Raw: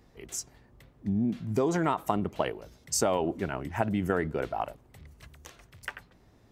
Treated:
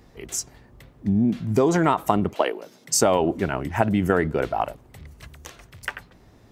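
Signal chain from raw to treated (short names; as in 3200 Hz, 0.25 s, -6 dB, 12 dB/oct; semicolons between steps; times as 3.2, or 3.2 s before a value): 2.33–3 HPF 310 Hz -> 130 Hz 24 dB/oct; gain +7.5 dB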